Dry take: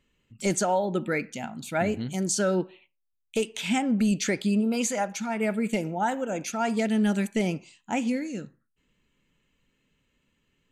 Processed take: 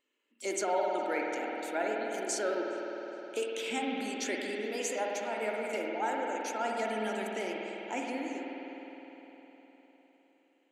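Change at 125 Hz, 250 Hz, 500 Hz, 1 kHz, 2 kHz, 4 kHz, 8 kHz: below −20 dB, −12.5 dB, −4.0 dB, −3.5 dB, −3.5 dB, −5.0 dB, −7.5 dB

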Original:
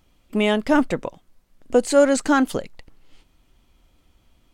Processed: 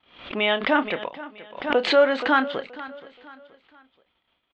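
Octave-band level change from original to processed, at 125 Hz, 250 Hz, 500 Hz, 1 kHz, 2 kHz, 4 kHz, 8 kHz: below −10 dB, −7.5 dB, −2.0 dB, +1.0 dB, +3.5 dB, +4.5 dB, below −20 dB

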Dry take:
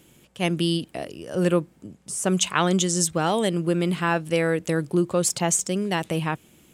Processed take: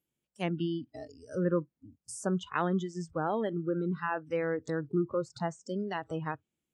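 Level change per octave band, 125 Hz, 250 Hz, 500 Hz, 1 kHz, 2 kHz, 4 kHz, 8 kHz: −9.5, −8.5, −8.0, −8.0, −10.5, −19.0, −23.5 decibels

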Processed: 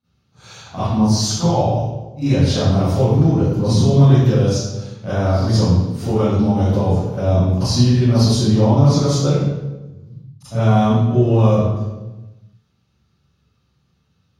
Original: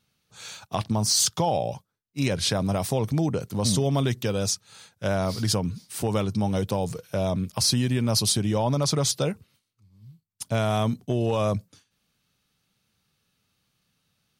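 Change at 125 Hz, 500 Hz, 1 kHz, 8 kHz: +13.0, +8.0, +7.0, −2.0 decibels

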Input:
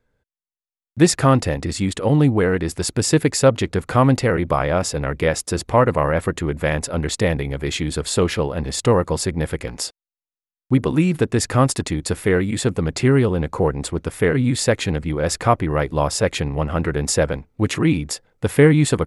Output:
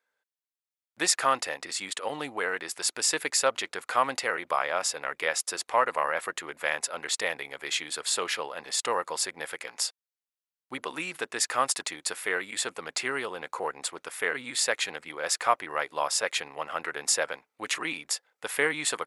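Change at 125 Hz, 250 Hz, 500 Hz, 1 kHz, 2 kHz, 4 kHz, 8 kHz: −35.5, −23.5, −13.5, −5.0, −3.0, −2.5, −2.5 decibels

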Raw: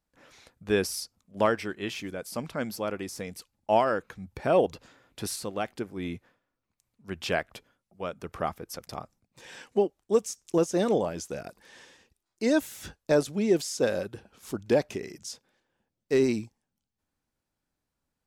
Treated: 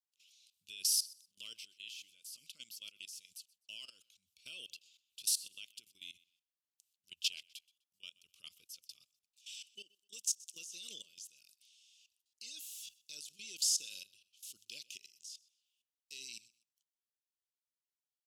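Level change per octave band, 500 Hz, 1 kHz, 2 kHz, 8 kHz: below −40 dB, below −40 dB, −17.5 dB, +1.5 dB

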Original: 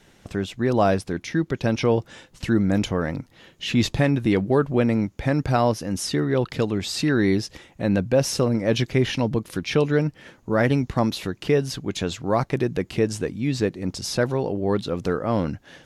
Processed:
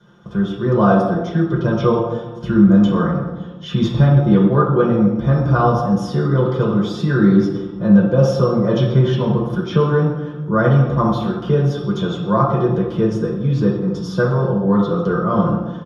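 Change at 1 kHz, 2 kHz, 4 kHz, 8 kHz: +7.5 dB, +1.0 dB, −3.0 dB, below −10 dB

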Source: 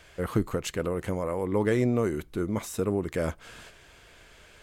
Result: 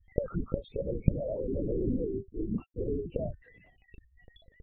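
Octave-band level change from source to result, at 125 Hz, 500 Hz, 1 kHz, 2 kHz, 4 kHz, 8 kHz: −3.0 dB, −5.0 dB, below −15 dB, below −20 dB, below −15 dB, below −40 dB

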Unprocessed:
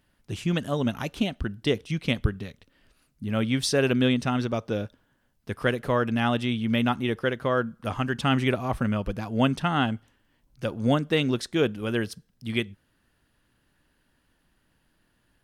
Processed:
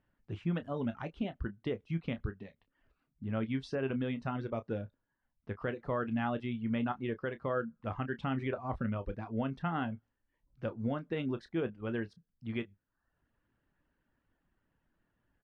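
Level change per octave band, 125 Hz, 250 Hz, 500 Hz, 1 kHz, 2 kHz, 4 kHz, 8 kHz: −10.0 dB, −9.5 dB, −10.0 dB, −10.0 dB, −12.5 dB, −19.5 dB, below −30 dB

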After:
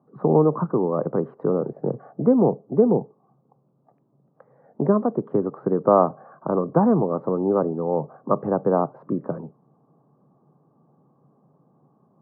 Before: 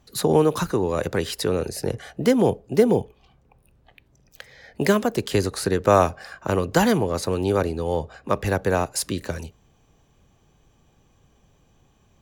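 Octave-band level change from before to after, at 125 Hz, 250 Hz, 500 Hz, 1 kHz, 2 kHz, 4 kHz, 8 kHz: −1.0 dB, +2.0 dB, +0.5 dB, 0.0 dB, below −15 dB, below −40 dB, below −40 dB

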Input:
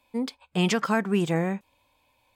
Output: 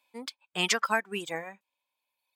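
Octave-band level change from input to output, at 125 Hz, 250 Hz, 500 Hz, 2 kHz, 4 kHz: −17.0, −15.0, −7.5, +1.0, +2.0 decibels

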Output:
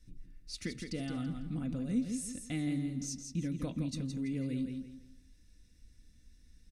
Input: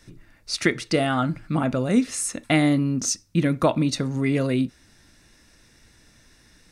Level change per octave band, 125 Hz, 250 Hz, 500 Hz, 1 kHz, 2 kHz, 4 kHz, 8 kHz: −12.5, −12.5, −21.5, −26.0, −21.0, −16.5, −15.0 decibels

